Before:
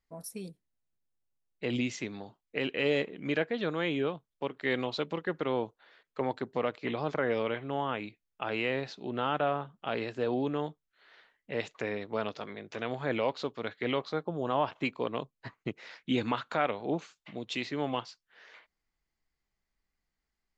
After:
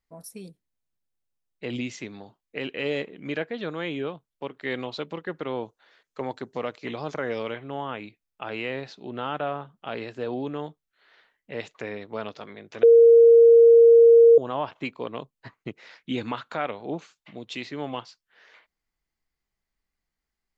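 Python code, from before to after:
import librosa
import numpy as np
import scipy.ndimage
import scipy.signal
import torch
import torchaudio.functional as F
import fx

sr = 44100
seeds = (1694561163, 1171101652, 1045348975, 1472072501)

y = fx.peak_eq(x, sr, hz=6300.0, db=fx.line((5.61, 7.0), (7.53, 13.0)), octaves=0.77, at=(5.61, 7.53), fade=0.02)
y = fx.edit(y, sr, fx.bleep(start_s=12.83, length_s=1.55, hz=464.0, db=-9.5), tone=tone)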